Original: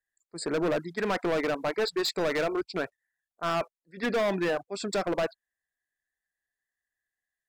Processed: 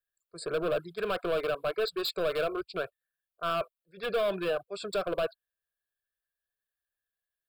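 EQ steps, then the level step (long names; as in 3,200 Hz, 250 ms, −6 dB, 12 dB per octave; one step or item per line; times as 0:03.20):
high-shelf EQ 10,000 Hz +5.5 dB
phaser with its sweep stopped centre 1,300 Hz, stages 8
0.0 dB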